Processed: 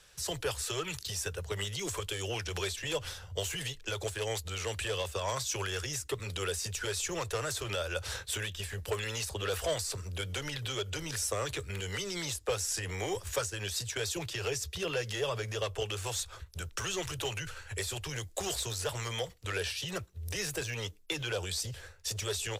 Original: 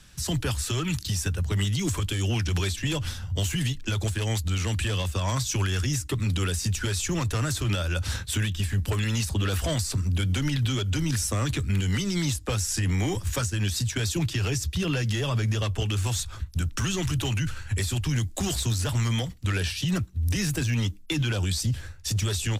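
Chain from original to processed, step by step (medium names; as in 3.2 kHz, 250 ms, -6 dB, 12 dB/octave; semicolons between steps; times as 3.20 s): resonant low shelf 340 Hz -9.5 dB, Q 3; trim -4.5 dB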